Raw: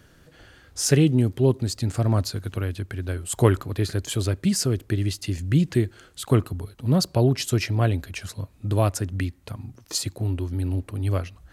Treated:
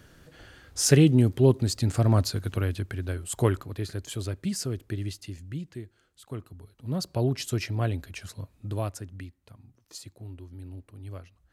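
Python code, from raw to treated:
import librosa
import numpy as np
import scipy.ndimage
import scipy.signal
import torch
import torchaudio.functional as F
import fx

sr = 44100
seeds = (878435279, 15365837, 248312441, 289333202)

y = fx.gain(x, sr, db=fx.line((2.71, 0.0), (3.81, -8.0), (5.08, -8.0), (5.72, -18.0), (6.33, -18.0), (7.25, -6.0), (8.5, -6.0), (9.39, -16.0)))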